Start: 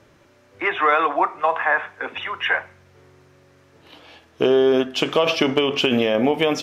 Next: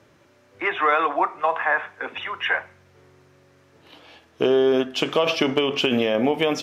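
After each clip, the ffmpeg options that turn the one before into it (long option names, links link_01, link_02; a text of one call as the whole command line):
ffmpeg -i in.wav -af "highpass=74,volume=-2dB" out.wav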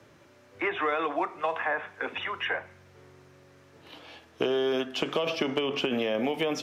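ffmpeg -i in.wav -filter_complex "[0:a]acrossover=split=160|600|1900[link_01][link_02][link_03][link_04];[link_01]acompressor=threshold=-48dB:ratio=4[link_05];[link_02]acompressor=threshold=-29dB:ratio=4[link_06];[link_03]acompressor=threshold=-35dB:ratio=4[link_07];[link_04]acompressor=threshold=-35dB:ratio=4[link_08];[link_05][link_06][link_07][link_08]amix=inputs=4:normalize=0" out.wav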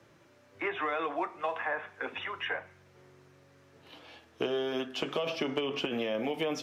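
ffmpeg -i in.wav -af "flanger=delay=5.7:depth=3.5:regen=-62:speed=0.33:shape=triangular" out.wav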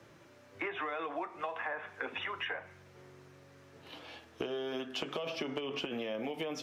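ffmpeg -i in.wav -af "acompressor=threshold=-37dB:ratio=6,volume=2.5dB" out.wav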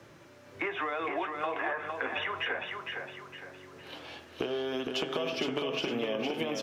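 ffmpeg -i in.wav -af "aecho=1:1:460|920|1380|1840|2300:0.562|0.214|0.0812|0.0309|0.0117,volume=4dB" out.wav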